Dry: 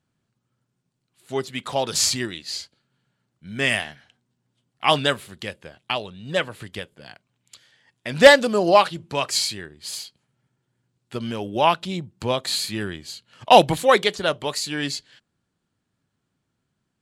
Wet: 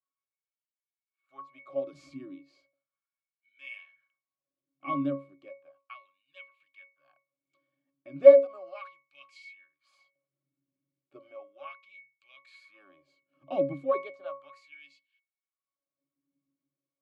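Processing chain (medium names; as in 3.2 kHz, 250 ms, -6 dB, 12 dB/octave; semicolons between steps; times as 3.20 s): LFO high-pass sine 0.35 Hz 250–2800 Hz; pitch-class resonator C#, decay 0.29 s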